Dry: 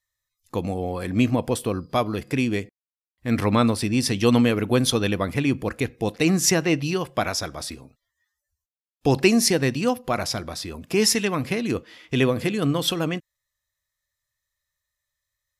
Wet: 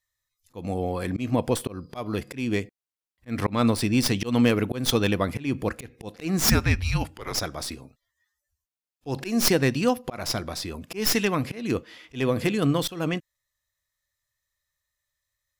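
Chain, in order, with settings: tracing distortion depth 0.095 ms; 6.44–7.35 frequency shift -230 Hz; auto swell 0.21 s

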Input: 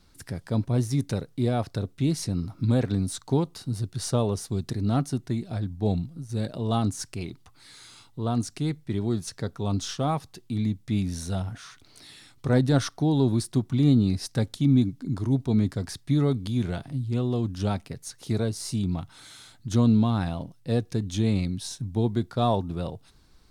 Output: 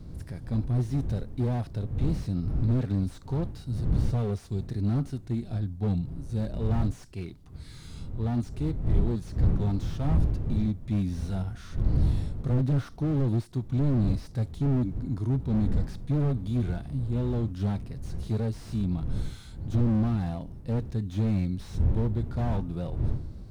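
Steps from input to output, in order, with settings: wind noise 100 Hz -28 dBFS; harmonic-percussive split percussive -9 dB; slew limiter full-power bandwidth 15 Hz

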